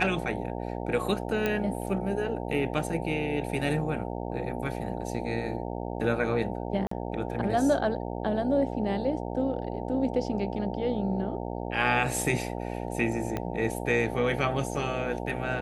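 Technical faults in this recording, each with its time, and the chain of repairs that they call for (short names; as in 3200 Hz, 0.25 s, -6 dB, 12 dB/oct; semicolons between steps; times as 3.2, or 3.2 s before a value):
buzz 60 Hz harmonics 15 -34 dBFS
1.46 pop -14 dBFS
6.87–6.91 gap 44 ms
13.37 pop -17 dBFS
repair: de-click; de-hum 60 Hz, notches 15; interpolate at 6.87, 44 ms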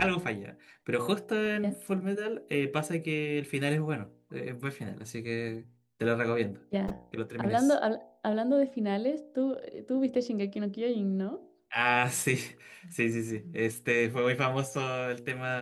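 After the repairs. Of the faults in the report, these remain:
13.37 pop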